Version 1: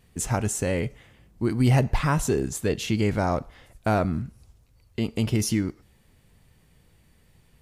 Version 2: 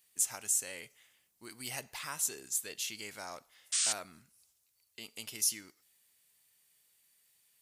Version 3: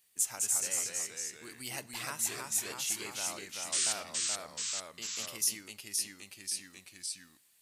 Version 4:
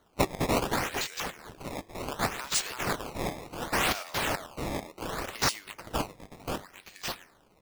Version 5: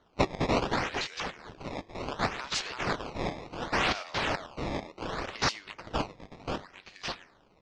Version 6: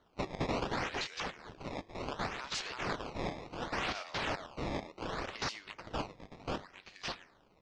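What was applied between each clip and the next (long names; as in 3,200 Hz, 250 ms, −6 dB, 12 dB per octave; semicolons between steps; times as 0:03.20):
sound drawn into the spectrogram noise, 0:03.72–0:03.93, 1,100–9,300 Hz −28 dBFS; first difference
delay with pitch and tempo change per echo 197 ms, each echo −1 semitone, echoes 3
high-pass filter 600 Hz 12 dB per octave; sample-and-hold swept by an LFO 17×, swing 160% 0.68 Hz; level +4 dB
low-pass filter 5,500 Hz 24 dB per octave
brickwall limiter −22 dBFS, peak gain reduction 10.5 dB; level −3.5 dB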